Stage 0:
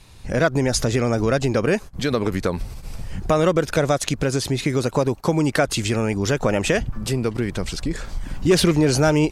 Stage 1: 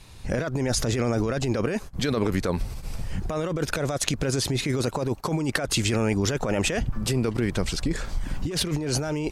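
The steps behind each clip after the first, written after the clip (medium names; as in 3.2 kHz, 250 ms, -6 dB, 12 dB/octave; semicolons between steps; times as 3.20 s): compressor with a negative ratio -22 dBFS, ratio -1; trim -2.5 dB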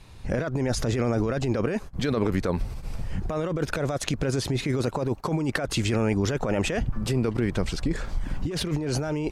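treble shelf 3.5 kHz -8 dB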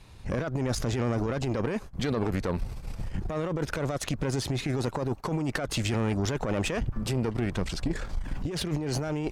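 valve stage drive 20 dB, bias 0.55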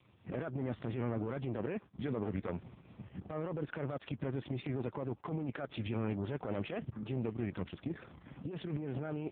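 trim -7.5 dB; AMR-NB 4.75 kbps 8 kHz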